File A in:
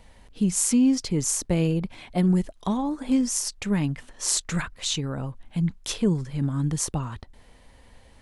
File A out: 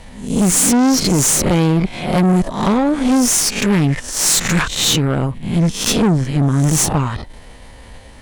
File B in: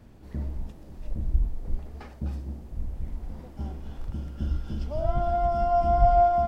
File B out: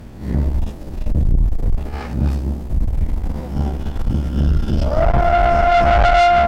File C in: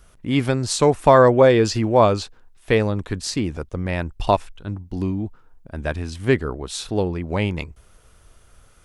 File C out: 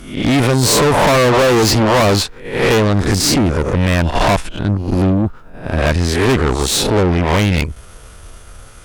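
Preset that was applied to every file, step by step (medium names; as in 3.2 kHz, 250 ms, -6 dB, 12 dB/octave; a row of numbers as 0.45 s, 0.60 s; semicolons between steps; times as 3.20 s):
reverse spectral sustain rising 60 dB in 0.54 s; valve stage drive 27 dB, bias 0.7; peak normalisation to -6 dBFS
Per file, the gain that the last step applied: +16.5 dB, +17.0 dB, +17.0 dB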